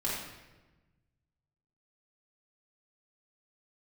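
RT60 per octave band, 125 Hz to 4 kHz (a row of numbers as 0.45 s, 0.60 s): 2.0 s, 1.6 s, 1.2 s, 1.1 s, 1.0 s, 0.85 s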